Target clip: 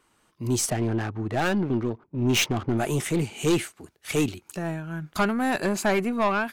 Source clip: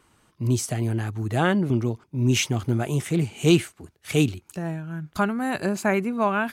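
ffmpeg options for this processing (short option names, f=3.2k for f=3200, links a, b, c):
-filter_complex "[0:a]asettb=1/sr,asplit=3[a][b][c];[a]atrim=end=0.704[d];[b]atrim=start=0.7:end=2.78,asetpts=PTS-STARTPTS,afade=t=in:d=0.004:c=qsin,afade=t=out:st=2.076:d=0.004:c=qsin,adynamicsmooth=sensitivity=6.5:basefreq=1.1k[e];[c]atrim=start=2.776[f];[d][e]acrossfade=d=0.004:c1=hsin:c2=qsin[g];[g][f]acrossfade=d=0.004:c1=qsin:c2=hsin,equalizer=f=82:w=0.58:g=-9,dynaudnorm=f=350:g=3:m=11.5dB,aeval=exprs='(tanh(4.47*val(0)+0.2)-tanh(0.2))/4.47':c=same,volume=-3.5dB"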